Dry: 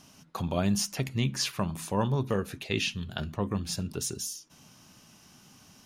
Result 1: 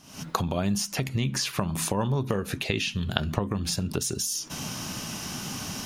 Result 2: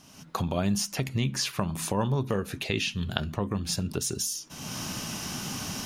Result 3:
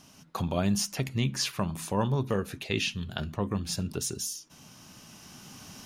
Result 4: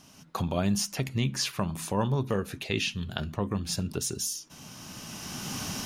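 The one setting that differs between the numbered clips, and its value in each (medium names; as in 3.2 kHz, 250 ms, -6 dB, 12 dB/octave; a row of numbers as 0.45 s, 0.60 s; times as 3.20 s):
recorder AGC, rising by: 83 dB/s, 34 dB/s, 5.1 dB/s, 13 dB/s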